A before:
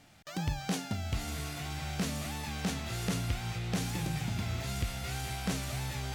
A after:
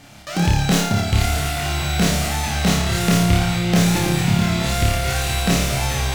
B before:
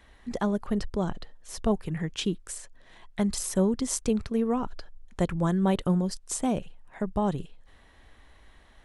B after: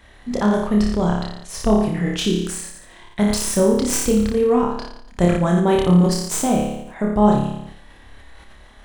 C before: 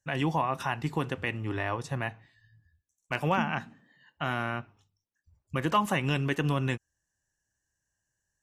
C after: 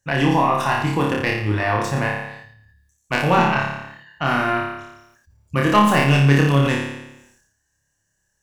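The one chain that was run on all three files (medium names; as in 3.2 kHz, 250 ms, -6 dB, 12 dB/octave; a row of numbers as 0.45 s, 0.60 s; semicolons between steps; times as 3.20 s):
tracing distortion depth 0.041 ms; flutter echo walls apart 4.9 m, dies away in 0.68 s; decay stretcher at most 62 dB/s; normalise loudness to -19 LUFS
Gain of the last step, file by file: +13.0 dB, +6.0 dB, +7.5 dB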